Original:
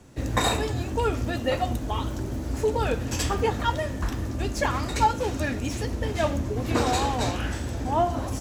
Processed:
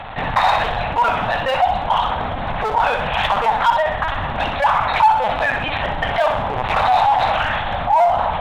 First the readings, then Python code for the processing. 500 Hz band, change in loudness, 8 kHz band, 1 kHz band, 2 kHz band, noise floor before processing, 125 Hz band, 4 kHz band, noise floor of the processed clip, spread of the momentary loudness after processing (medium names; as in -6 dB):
+6.5 dB, +9.0 dB, under -10 dB, +13.0 dB, +12.5 dB, -33 dBFS, -1.5 dB, +7.5 dB, -24 dBFS, 7 LU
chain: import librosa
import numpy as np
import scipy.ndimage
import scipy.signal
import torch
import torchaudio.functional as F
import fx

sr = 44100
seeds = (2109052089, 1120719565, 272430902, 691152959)

p1 = fx.lpc_vocoder(x, sr, seeds[0], excitation='pitch_kept', order=10)
p2 = fx.cheby_harmonics(p1, sr, harmonics=(6, 7, 8), levels_db=(-24, -42, -27), full_scale_db=-9.5)
p3 = 10.0 ** (-23.0 / 20.0) * (np.abs((p2 / 10.0 ** (-23.0 / 20.0) + 3.0) % 4.0 - 2.0) - 1.0)
p4 = p2 + F.gain(torch.from_numpy(p3), -6.0).numpy()
p5 = fx.low_shelf_res(p4, sr, hz=540.0, db=-13.0, q=3.0)
p6 = p5 + fx.echo_feedback(p5, sr, ms=63, feedback_pct=38, wet_db=-10, dry=0)
y = fx.env_flatten(p6, sr, amount_pct=50)